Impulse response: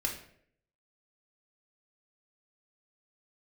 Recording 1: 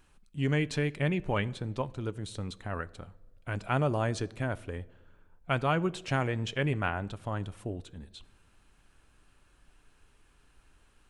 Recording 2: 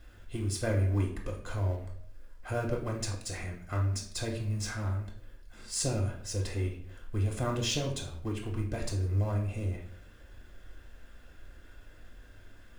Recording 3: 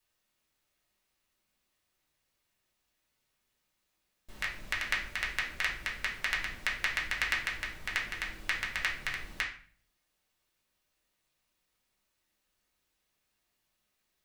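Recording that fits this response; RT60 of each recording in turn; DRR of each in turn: 2; 1.4, 0.65, 0.40 seconds; 15.0, 0.5, −4.5 decibels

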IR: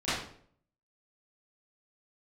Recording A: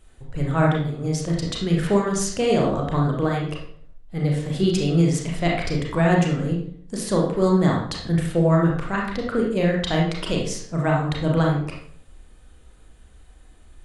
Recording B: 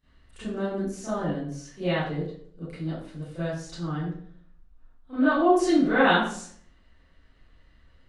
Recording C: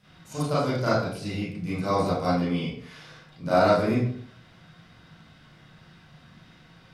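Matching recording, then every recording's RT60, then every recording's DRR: B; 0.60, 0.60, 0.60 seconds; −2.0, −16.5, −11.5 decibels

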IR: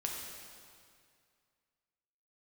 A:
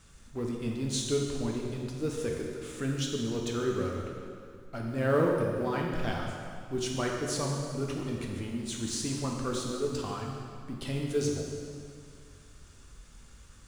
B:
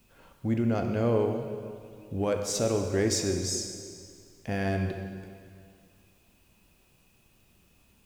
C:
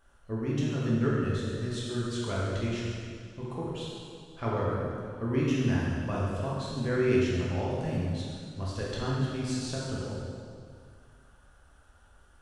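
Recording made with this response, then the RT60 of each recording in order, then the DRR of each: A; 2.2, 2.2, 2.2 seconds; −1.0, 4.0, −7.0 decibels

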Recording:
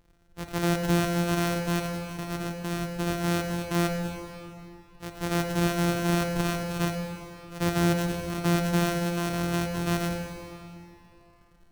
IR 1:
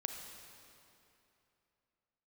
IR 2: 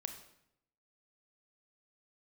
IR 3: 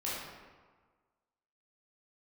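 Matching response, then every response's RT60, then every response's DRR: 1; 2.9, 0.75, 1.5 seconds; 4.0, 6.5, −8.5 decibels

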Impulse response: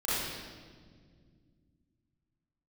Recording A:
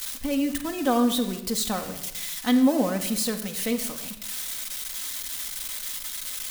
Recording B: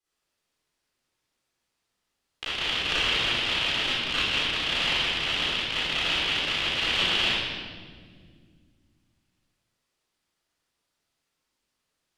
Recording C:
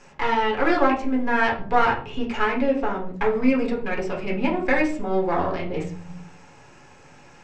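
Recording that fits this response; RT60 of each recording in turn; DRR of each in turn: B; 0.95, 1.9, 0.45 seconds; 4.0, −11.5, −3.0 decibels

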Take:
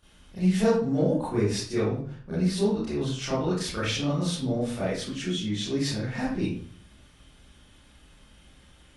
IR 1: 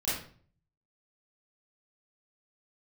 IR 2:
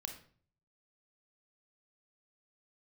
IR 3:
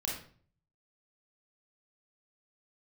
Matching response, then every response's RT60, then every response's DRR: 1; 0.45, 0.50, 0.45 seconds; −12.0, 4.5, −3.0 decibels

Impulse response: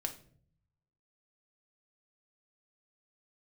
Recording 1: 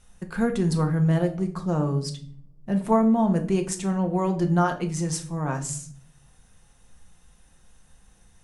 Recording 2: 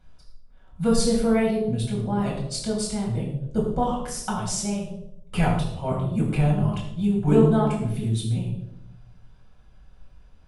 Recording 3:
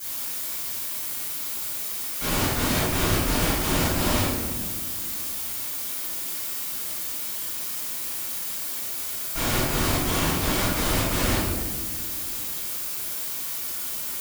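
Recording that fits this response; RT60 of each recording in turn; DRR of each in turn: 1; 0.55 s, 0.80 s, non-exponential decay; 4.0, −4.5, −15.5 decibels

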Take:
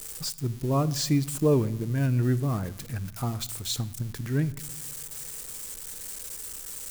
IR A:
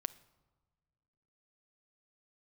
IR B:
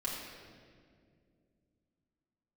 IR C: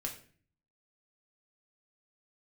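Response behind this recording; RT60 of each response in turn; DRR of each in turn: A; non-exponential decay, 2.2 s, 0.45 s; 14.0, −5.5, 0.0 decibels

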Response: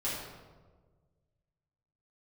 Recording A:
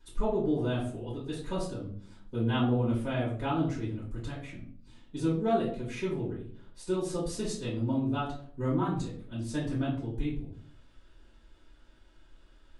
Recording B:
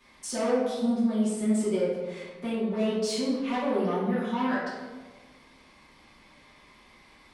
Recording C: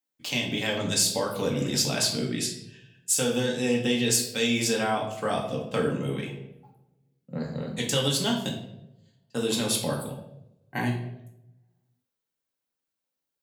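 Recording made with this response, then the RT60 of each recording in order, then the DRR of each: B; 0.55, 1.4, 0.85 seconds; −10.5, −9.5, −1.5 decibels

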